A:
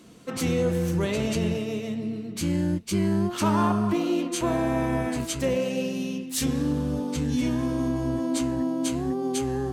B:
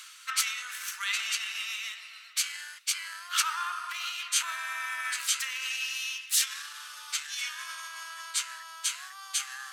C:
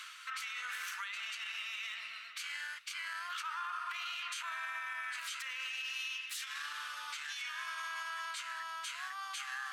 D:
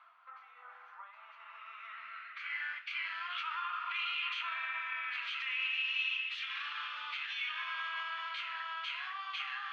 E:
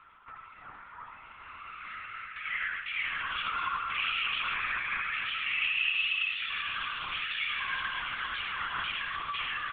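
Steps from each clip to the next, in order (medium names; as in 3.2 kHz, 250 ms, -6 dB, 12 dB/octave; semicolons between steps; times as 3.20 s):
peak limiter -21 dBFS, peak gain reduction 8.5 dB; reverse; upward compressor, threshold -35 dBFS; reverse; elliptic high-pass 1.3 kHz, stop band 70 dB; trim +9 dB
tone controls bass +10 dB, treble -12 dB; compression, threshold -37 dBFS, peak gain reduction 11.5 dB; peak limiter -35 dBFS, peak gain reduction 10 dB; trim +3.5 dB
flange 0.79 Hz, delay 2.1 ms, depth 8.4 ms, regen -71%; low-pass sweep 740 Hz -> 2.8 kHz, 1.00–3.07 s; reverberation RT60 0.55 s, pre-delay 3 ms, DRR 6 dB; trim -3 dB
flange 0.45 Hz, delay 4.4 ms, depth 3.6 ms, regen -65%; delay 95 ms -5 dB; LPC vocoder at 8 kHz whisper; trim +8.5 dB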